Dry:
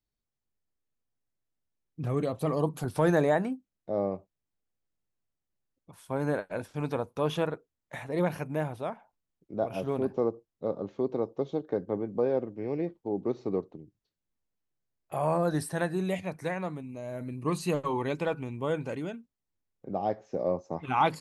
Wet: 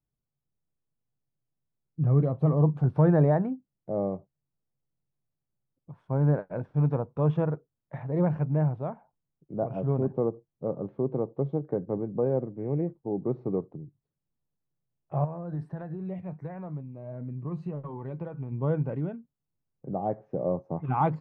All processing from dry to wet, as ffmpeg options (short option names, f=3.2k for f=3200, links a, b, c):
-filter_complex "[0:a]asettb=1/sr,asplit=3[a][b][c];[a]atrim=end=15.244[d];[b]atrim=start=15.24:end=18.52,asetpts=PTS-STARTPTS,afade=t=in:d=0.004:c=qsin,afade=t=out:st=3.276:d=0.004:c=qsin,acompressor=threshold=-31dB:ratio=4:attack=3.2:release=140:knee=1:detection=peak,flanger=delay=4.1:depth=1.7:regen=79:speed=1.5:shape=sinusoidal[e];[c]atrim=start=18.516[f];[d][e]acrossfade=d=0.004:c1=hsin:c2=qsin[g];[g][f]acrossfade=d=0.004:c1=qsin:c2=hsin,lowpass=1.1k,equalizer=f=140:w=2.6:g=13"